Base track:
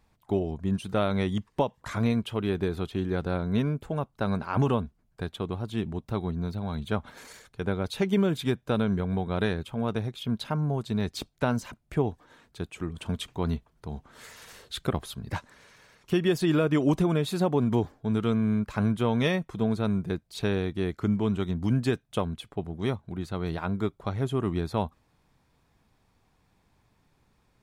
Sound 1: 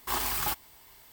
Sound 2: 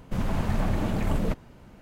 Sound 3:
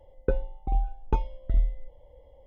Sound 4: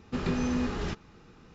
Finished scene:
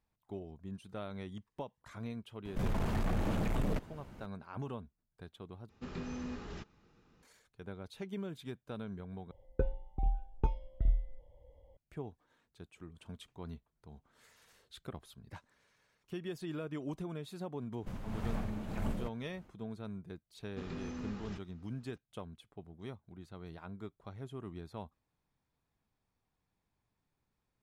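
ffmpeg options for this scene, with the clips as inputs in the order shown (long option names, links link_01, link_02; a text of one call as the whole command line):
ffmpeg -i bed.wav -i cue0.wav -i cue1.wav -i cue2.wav -i cue3.wav -filter_complex "[2:a]asplit=2[link_01][link_02];[4:a]asplit=2[link_03][link_04];[0:a]volume=-17dB[link_05];[link_01]asoftclip=type=tanh:threshold=-25.5dB[link_06];[3:a]equalizer=frequency=99:width=0.55:gain=6[link_07];[link_02]tremolo=f=1.8:d=0.53[link_08];[link_05]asplit=3[link_09][link_10][link_11];[link_09]atrim=end=5.694[link_12];[link_03]atrim=end=1.54,asetpts=PTS-STARTPTS,volume=-12.5dB[link_13];[link_10]atrim=start=7.226:end=9.314[link_14];[link_07]atrim=end=2.46,asetpts=PTS-STARTPTS,volume=-9dB[link_15];[link_11]atrim=start=11.766[link_16];[link_06]atrim=end=1.81,asetpts=PTS-STARTPTS,volume=-2.5dB,afade=type=in:duration=0.004:curve=hsin,afade=type=out:start_time=1.806:duration=0.004:curve=hsin,adelay=2450[link_17];[link_08]atrim=end=1.81,asetpts=PTS-STARTPTS,volume=-10.5dB,afade=type=in:duration=0.1,afade=type=out:start_time=1.71:duration=0.1,adelay=17750[link_18];[link_04]atrim=end=1.54,asetpts=PTS-STARTPTS,volume=-14dB,afade=type=in:duration=0.004:curve=hsin,afade=type=out:start_time=1.536:duration=0.004:curve=hsin,adelay=20440[link_19];[link_12][link_13]acrossfade=duration=0.004:curve1=hsin:curve2=hsin[link_20];[link_20][link_14]acrossfade=duration=0.004:curve1=hsin:curve2=hsin[link_21];[link_21][link_15]acrossfade=duration=0.004:curve1=hsin:curve2=hsin[link_22];[link_22][link_16]acrossfade=duration=0.004:curve1=hsin:curve2=hsin[link_23];[link_23][link_17][link_18][link_19]amix=inputs=4:normalize=0" out.wav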